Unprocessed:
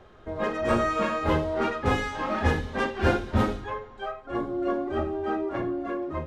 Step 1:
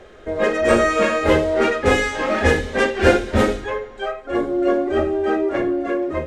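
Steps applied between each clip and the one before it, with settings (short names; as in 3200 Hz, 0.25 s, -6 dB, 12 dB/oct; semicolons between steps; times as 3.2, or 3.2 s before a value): graphic EQ 125/500/1000/2000/8000 Hz -7/+7/-6/+6/+9 dB; gain +6.5 dB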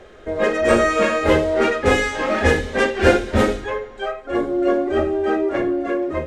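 nothing audible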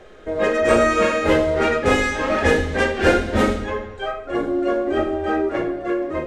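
reverb RT60 1.0 s, pre-delay 6 ms, DRR 7.5 dB; gain -1.5 dB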